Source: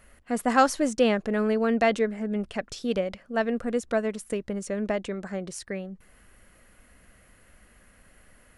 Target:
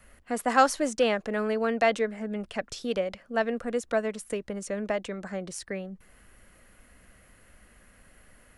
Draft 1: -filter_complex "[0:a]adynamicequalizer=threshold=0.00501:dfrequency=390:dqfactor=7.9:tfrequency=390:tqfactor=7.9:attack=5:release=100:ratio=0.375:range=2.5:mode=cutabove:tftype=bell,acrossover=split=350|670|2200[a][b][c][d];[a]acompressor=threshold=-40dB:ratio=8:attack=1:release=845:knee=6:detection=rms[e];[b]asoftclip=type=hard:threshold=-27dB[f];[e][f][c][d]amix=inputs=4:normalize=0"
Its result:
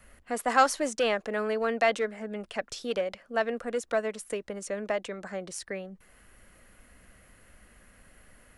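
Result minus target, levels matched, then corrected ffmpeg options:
hard clip: distortion +18 dB; compressor: peak gain reduction +7.5 dB
-filter_complex "[0:a]adynamicequalizer=threshold=0.00501:dfrequency=390:dqfactor=7.9:tfrequency=390:tqfactor=7.9:attack=5:release=100:ratio=0.375:range=2.5:mode=cutabove:tftype=bell,acrossover=split=350|670|2200[a][b][c][d];[a]acompressor=threshold=-31.5dB:ratio=8:attack=1:release=845:knee=6:detection=rms[e];[b]asoftclip=type=hard:threshold=-20dB[f];[e][f][c][d]amix=inputs=4:normalize=0"

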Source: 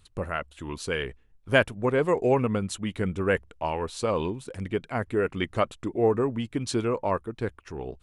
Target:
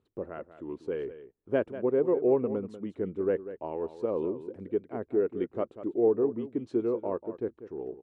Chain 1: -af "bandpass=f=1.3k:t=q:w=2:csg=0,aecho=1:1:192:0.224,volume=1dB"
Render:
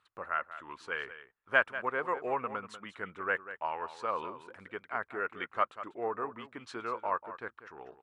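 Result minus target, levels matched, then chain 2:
1000 Hz band +13.5 dB
-af "bandpass=f=370:t=q:w=2:csg=0,aecho=1:1:192:0.224,volume=1dB"

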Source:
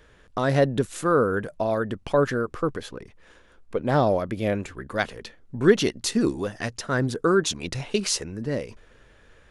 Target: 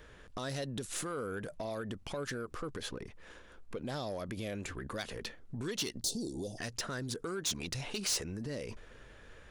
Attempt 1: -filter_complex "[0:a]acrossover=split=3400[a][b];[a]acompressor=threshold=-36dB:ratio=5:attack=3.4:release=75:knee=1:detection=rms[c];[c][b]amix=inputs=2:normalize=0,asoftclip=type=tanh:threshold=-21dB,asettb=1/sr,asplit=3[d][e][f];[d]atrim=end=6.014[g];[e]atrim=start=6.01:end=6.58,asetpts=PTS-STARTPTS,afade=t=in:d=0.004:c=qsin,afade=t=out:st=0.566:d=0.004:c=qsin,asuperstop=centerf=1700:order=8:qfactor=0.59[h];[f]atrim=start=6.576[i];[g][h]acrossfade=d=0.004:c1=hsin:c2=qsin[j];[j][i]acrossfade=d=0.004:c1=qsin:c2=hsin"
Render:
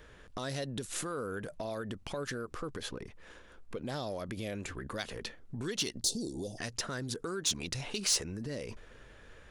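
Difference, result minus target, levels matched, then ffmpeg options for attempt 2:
soft clip: distortion -7 dB
-filter_complex "[0:a]acrossover=split=3400[a][b];[a]acompressor=threshold=-36dB:ratio=5:attack=3.4:release=75:knee=1:detection=rms[c];[c][b]amix=inputs=2:normalize=0,asoftclip=type=tanh:threshold=-28.5dB,asettb=1/sr,asplit=3[d][e][f];[d]atrim=end=6.014[g];[e]atrim=start=6.01:end=6.58,asetpts=PTS-STARTPTS,afade=t=in:d=0.004:c=qsin,afade=t=out:st=0.566:d=0.004:c=qsin,asuperstop=centerf=1700:order=8:qfactor=0.59[h];[f]atrim=start=6.576[i];[g][h]acrossfade=d=0.004:c1=hsin:c2=qsin[j];[j][i]acrossfade=d=0.004:c1=qsin:c2=hsin"

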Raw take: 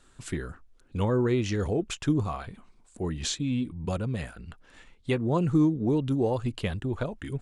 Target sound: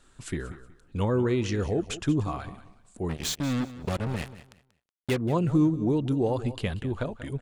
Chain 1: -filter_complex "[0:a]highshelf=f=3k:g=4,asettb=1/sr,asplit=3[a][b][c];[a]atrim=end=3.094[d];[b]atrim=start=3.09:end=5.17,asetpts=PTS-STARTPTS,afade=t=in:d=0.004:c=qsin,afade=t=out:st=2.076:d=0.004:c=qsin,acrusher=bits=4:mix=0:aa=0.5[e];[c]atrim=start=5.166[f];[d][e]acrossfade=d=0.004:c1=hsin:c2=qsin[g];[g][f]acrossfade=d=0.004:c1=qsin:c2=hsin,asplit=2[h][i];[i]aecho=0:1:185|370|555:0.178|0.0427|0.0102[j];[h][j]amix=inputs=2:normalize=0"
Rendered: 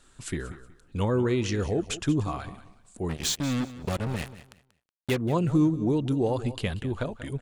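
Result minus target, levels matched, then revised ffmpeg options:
8000 Hz band +3.5 dB
-filter_complex "[0:a]asettb=1/sr,asplit=3[a][b][c];[a]atrim=end=3.094[d];[b]atrim=start=3.09:end=5.17,asetpts=PTS-STARTPTS,afade=t=in:d=0.004:c=qsin,afade=t=out:st=2.076:d=0.004:c=qsin,acrusher=bits=4:mix=0:aa=0.5[e];[c]atrim=start=5.166[f];[d][e]acrossfade=d=0.004:c1=hsin:c2=qsin[g];[g][f]acrossfade=d=0.004:c1=qsin:c2=hsin,asplit=2[h][i];[i]aecho=0:1:185|370|555:0.178|0.0427|0.0102[j];[h][j]amix=inputs=2:normalize=0"

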